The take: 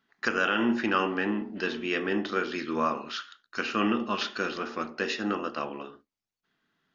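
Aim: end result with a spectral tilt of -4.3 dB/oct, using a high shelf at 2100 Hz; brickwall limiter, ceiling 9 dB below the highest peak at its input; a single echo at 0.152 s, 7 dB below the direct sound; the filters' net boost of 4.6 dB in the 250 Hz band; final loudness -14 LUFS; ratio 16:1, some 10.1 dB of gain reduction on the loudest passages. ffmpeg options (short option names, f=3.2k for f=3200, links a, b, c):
-af "equalizer=f=250:t=o:g=5.5,highshelf=f=2.1k:g=6,acompressor=threshold=-27dB:ratio=16,alimiter=level_in=0.5dB:limit=-24dB:level=0:latency=1,volume=-0.5dB,aecho=1:1:152:0.447,volume=20dB"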